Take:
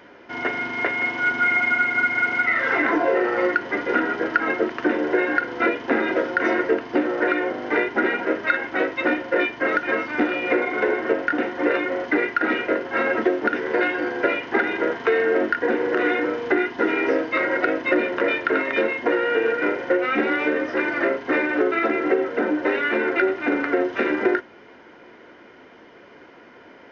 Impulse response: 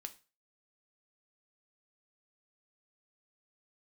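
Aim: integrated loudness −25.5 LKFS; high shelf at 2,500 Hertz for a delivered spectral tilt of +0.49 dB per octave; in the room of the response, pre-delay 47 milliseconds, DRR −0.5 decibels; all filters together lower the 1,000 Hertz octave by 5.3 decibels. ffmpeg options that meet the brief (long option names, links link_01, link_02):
-filter_complex "[0:a]equalizer=frequency=1000:width_type=o:gain=-7,highshelf=frequency=2500:gain=-6,asplit=2[link_01][link_02];[1:a]atrim=start_sample=2205,adelay=47[link_03];[link_02][link_03]afir=irnorm=-1:irlink=0,volume=5dB[link_04];[link_01][link_04]amix=inputs=2:normalize=0,volume=-5dB"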